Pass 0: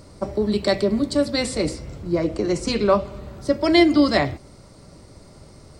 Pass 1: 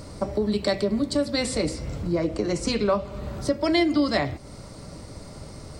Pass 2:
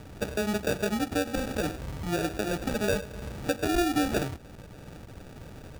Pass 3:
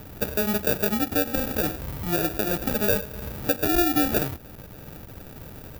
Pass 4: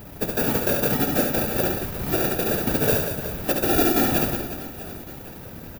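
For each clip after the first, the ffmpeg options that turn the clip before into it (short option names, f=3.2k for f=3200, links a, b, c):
-af "bandreject=f=370:w=12,acompressor=threshold=-33dB:ratio=2,volume=5.5dB"
-af "acrusher=samples=42:mix=1:aa=0.000001,volume=-4.5dB"
-af "aexciter=amount=5.5:drive=5.8:freq=11k,volume=2.5dB"
-filter_complex "[0:a]aeval=exprs='clip(val(0),-1,0.266)':c=same,afftfilt=real='hypot(re,im)*cos(2*PI*random(0))':imag='hypot(re,im)*sin(2*PI*random(1))':win_size=512:overlap=0.75,asplit=2[a][b];[b]aecho=0:1:70|182|361.2|647.9|1107:0.631|0.398|0.251|0.158|0.1[c];[a][c]amix=inputs=2:normalize=0,volume=6.5dB"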